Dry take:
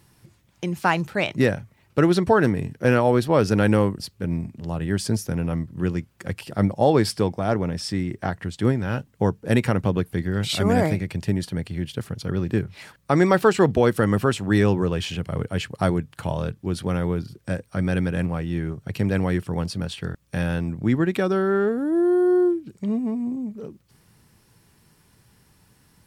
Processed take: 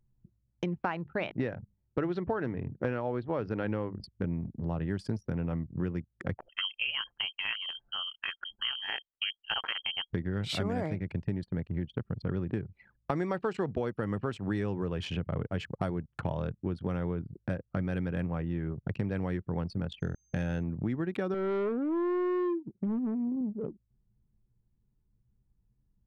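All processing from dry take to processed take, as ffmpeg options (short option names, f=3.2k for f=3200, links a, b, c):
-filter_complex "[0:a]asettb=1/sr,asplit=3[a][b][c];[a]atrim=end=0.784[d];[b]atrim=start=0.78:end=4.04,asetpts=PTS-STARTPTS,afade=t=in:d=0.004:c=qsin,afade=t=out:st=3.256:d=0.004:c=qsin,lowpass=3.8k,equalizer=f=180:w=2.2:g=-2.5,bandreject=f=50:t=h:w=6,bandreject=f=100:t=h:w=6,bandreject=f=150:t=h:w=6,bandreject=f=200:t=h:w=6[e];[c]atrim=start=4.036[f];[d][e]acrossfade=d=0.004:c1=hsin:c2=qsin[g];[g][f]acrossfade=d=0.004:c1=qsin:c2=hsin,asettb=1/sr,asplit=3[h][i][j];[h]atrim=end=6.374[k];[i]atrim=start=6.37:end=10.11,asetpts=PTS-STARTPTS,afade=t=in:d=0.004:c=qsin,afade=t=out:st=3.736:d=0.004:c=qsin,tiltshelf=f=1.4k:g=-6.5,tremolo=f=180:d=0.571,lowpass=f=2.8k:t=q:w=0.5098,lowpass=f=2.8k:t=q:w=0.6013,lowpass=f=2.8k:t=q:w=0.9,lowpass=f=2.8k:t=q:w=2.563,afreqshift=-3300[l];[j]atrim=start=10.106[m];[k][l]acrossfade=d=0.004:c1=hsin:c2=qsin[n];[n][m]acrossfade=d=0.004:c1=qsin:c2=hsin,asettb=1/sr,asplit=3[o][p][q];[o]atrim=end=20.004[r];[p]atrim=start=20:end=20.63,asetpts=PTS-STARTPTS,afade=t=in:d=0.004:c=qsin,afade=t=out:st=0.626:d=0.004:c=qsin,equalizer=f=1.1k:w=3.7:g=-8.5,aeval=exprs='val(0)+0.00794*sin(2*PI*6300*n/s)':c=same[s];[q]atrim=start=20.626[t];[r][s]acrossfade=d=0.004:c1=hsin:c2=qsin[u];[u][t]acrossfade=d=0.004:c1=qsin:c2=hsin,asettb=1/sr,asplit=3[v][w][x];[v]atrim=end=21.344[y];[w]atrim=start=21.34:end=23.41,asetpts=PTS-STARTPTS,afade=t=in:d=0.004:c=qsin,afade=t=out:st=2.066:d=0.004:c=qsin,highpass=130,volume=21.5dB,asoftclip=hard,volume=-21.5dB,adynamicsmooth=sensitivity=1.5:basefreq=3.3k[z];[x]atrim=start=23.406[aa];[y][z]acrossfade=d=0.004:c1=hsin:c2=qsin[ab];[ab][aa]acrossfade=d=0.004:c1=qsin:c2=hsin,lowpass=f=2.8k:p=1,anlmdn=3.98,acompressor=threshold=-31dB:ratio=6,volume=1.5dB"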